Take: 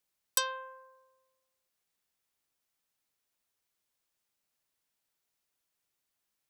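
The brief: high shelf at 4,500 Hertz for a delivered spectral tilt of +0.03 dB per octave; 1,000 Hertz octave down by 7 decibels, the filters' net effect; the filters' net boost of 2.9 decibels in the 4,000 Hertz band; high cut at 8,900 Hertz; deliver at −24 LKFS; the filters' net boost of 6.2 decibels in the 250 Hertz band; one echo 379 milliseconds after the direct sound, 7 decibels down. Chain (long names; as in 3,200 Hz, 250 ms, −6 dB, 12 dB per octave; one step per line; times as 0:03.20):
low-pass filter 8,900 Hz
parametric band 250 Hz +8.5 dB
parametric band 1,000 Hz −7.5 dB
parametric band 4,000 Hz +6.5 dB
high-shelf EQ 4,500 Hz −5 dB
single-tap delay 379 ms −7 dB
level +11.5 dB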